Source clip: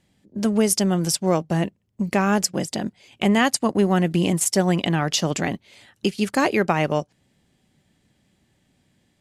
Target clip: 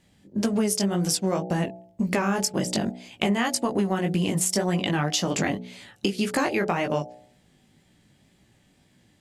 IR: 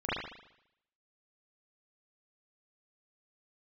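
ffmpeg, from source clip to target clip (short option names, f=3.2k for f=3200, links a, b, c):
-af "flanger=delay=16:depth=5.2:speed=1.9,bandreject=f=61.14:t=h:w=4,bandreject=f=122.28:t=h:w=4,bandreject=f=183.42:t=h:w=4,bandreject=f=244.56:t=h:w=4,bandreject=f=305.7:t=h:w=4,bandreject=f=366.84:t=h:w=4,bandreject=f=427.98:t=h:w=4,bandreject=f=489.12:t=h:w=4,bandreject=f=550.26:t=h:w=4,bandreject=f=611.4:t=h:w=4,bandreject=f=672.54:t=h:w=4,bandreject=f=733.68:t=h:w=4,bandreject=f=794.82:t=h:w=4,bandreject=f=855.96:t=h:w=4,acompressor=threshold=-28dB:ratio=6,volume=7dB"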